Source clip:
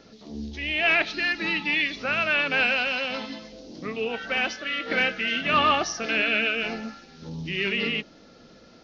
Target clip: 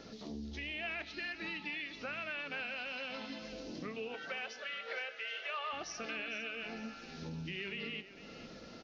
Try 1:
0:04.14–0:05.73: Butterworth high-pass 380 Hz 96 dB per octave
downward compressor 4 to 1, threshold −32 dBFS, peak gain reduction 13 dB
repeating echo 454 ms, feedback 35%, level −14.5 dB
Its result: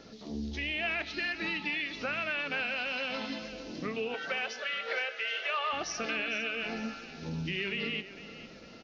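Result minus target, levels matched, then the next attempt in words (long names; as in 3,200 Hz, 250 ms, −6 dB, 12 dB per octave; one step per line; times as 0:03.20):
downward compressor: peak gain reduction −7.5 dB
0:04.14–0:05.73: Butterworth high-pass 380 Hz 96 dB per octave
downward compressor 4 to 1, threshold −42 dBFS, peak gain reduction 20.5 dB
repeating echo 454 ms, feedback 35%, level −14.5 dB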